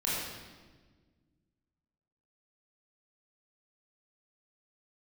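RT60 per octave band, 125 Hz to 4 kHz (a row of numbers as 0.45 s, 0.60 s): 2.4 s, 2.3 s, 1.6 s, 1.3 s, 1.2 s, 1.2 s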